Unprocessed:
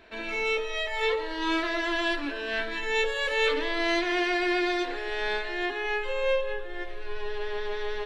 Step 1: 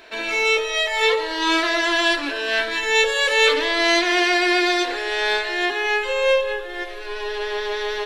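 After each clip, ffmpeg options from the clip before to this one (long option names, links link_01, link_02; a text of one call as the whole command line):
ffmpeg -i in.wav -af "bass=frequency=250:gain=-13,treble=frequency=4000:gain=8,volume=8.5dB" out.wav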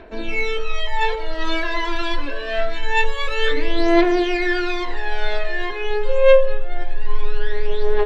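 ffmpeg -i in.wav -af "aemphasis=mode=reproduction:type=riaa,aphaser=in_gain=1:out_gain=1:delay=2.2:decay=0.69:speed=0.25:type=triangular,volume=-5dB" out.wav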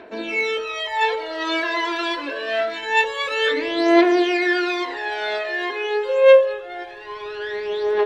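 ffmpeg -i in.wav -af "highpass=210,volume=1.5dB" out.wav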